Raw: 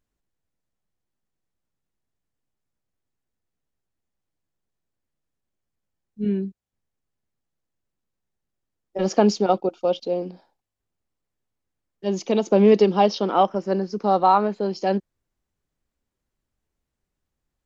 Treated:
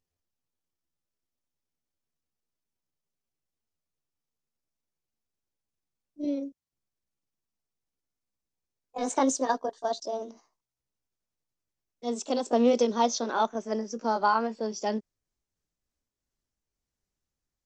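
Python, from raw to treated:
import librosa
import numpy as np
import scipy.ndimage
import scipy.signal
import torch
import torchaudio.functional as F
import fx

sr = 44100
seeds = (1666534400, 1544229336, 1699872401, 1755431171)

y = fx.pitch_glide(x, sr, semitones=9.5, runs='ending unshifted')
y = fx.peak_eq(y, sr, hz=5800.0, db=9.0, octaves=0.93)
y = y * 10.0 ** (-6.5 / 20.0)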